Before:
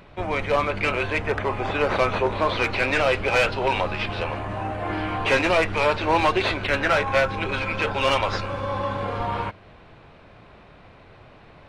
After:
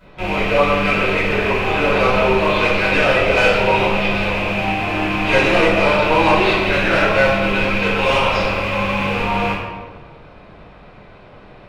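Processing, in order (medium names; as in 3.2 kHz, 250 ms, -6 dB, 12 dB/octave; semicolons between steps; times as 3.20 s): rattle on loud lows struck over -35 dBFS, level -15 dBFS; reverberation RT60 1.6 s, pre-delay 3 ms, DRR -14.5 dB; trim -11.5 dB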